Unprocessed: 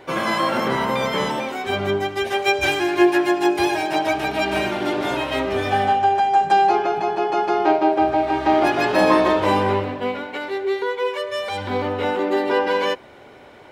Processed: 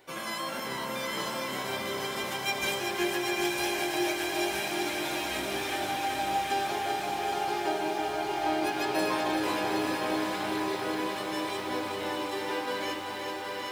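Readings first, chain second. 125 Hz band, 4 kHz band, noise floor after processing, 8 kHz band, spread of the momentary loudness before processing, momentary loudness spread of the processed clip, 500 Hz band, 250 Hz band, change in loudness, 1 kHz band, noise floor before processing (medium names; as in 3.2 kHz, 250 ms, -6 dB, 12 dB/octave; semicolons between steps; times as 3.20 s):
-13.5 dB, -4.5 dB, -36 dBFS, +1.0 dB, 8 LU, 4 LU, -12.5 dB, -10.5 dB, -10.5 dB, -11.5 dB, -44 dBFS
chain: pre-emphasis filter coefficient 0.8; hum notches 50/100 Hz; echo that smears into a reverb 915 ms, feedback 60%, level -3 dB; bit-crushed delay 384 ms, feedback 80%, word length 9-bit, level -6 dB; trim -2.5 dB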